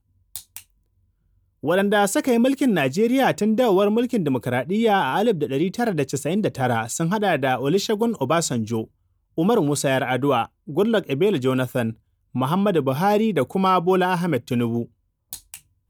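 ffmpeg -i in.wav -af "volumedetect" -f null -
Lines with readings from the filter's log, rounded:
mean_volume: -21.6 dB
max_volume: -7.5 dB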